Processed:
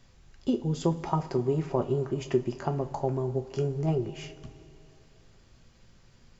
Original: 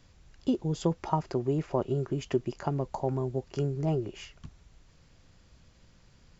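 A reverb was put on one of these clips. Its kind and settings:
coupled-rooms reverb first 0.26 s, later 3.1 s, from −18 dB, DRR 5.5 dB

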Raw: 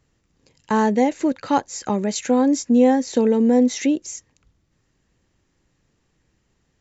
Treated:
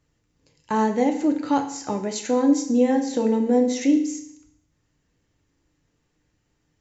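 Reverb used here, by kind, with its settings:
feedback delay network reverb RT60 0.7 s, low-frequency decay 1.1×, high-frequency decay 1×, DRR 3.5 dB
level −5 dB

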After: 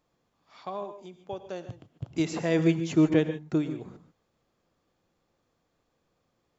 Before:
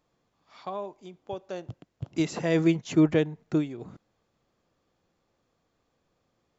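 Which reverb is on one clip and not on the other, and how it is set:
reverb whose tail is shaped and stops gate 170 ms rising, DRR 10.5 dB
level −1 dB

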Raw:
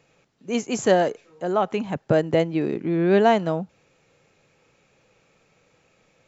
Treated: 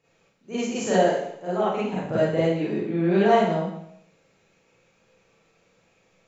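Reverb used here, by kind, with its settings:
four-comb reverb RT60 0.71 s, combs from 33 ms, DRR −10 dB
level −11.5 dB

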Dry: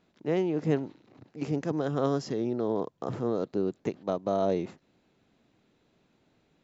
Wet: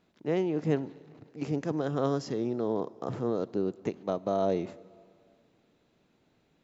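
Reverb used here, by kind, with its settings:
dense smooth reverb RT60 2.4 s, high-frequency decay 0.85×, DRR 19.5 dB
level −1 dB

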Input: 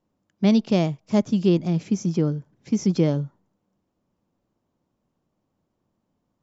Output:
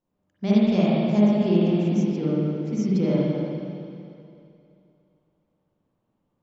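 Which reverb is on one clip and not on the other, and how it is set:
spring reverb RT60 2.6 s, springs 43/53/58 ms, chirp 30 ms, DRR −8.5 dB
level −8.5 dB

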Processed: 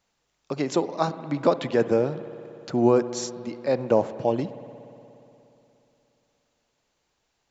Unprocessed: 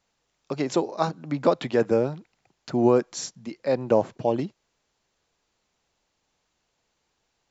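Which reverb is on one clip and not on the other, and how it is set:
spring reverb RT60 3.1 s, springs 59 ms, chirp 45 ms, DRR 13 dB

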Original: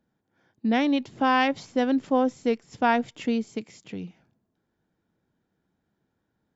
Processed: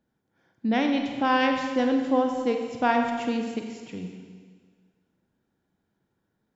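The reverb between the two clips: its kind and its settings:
four-comb reverb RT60 1.7 s, combs from 33 ms, DRR 3.5 dB
level −1.5 dB

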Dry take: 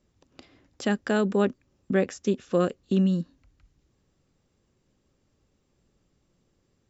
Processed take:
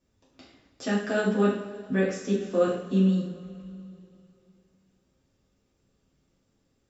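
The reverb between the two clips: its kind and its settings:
coupled-rooms reverb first 0.53 s, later 2.9 s, from −18 dB, DRR −7.5 dB
level −8.5 dB

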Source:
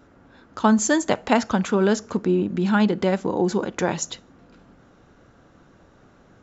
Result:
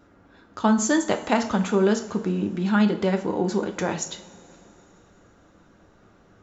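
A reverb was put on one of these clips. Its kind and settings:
coupled-rooms reverb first 0.43 s, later 3.5 s, from −20 dB, DRR 5 dB
level −3 dB

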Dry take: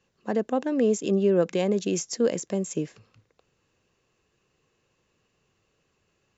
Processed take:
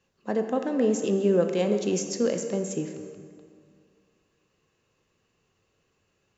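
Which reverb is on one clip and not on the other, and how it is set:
dense smooth reverb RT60 2.2 s, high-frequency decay 0.65×, DRR 5.5 dB
level −1.5 dB

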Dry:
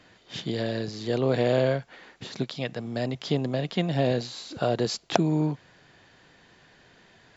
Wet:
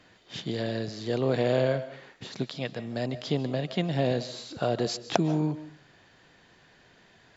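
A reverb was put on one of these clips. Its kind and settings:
comb and all-pass reverb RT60 0.45 s, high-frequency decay 0.7×, pre-delay 105 ms, DRR 14 dB
level −2 dB

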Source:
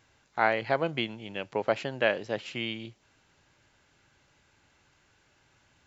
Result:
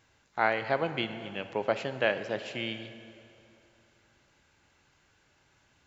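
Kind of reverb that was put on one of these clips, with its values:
dense smooth reverb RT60 2.8 s, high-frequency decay 0.8×, DRR 10 dB
level −1.5 dB

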